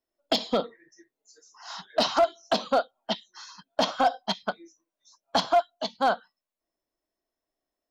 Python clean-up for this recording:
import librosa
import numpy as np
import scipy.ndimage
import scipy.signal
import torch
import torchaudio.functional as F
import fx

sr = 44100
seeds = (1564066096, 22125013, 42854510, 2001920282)

y = fx.fix_declip(x, sr, threshold_db=-14.5)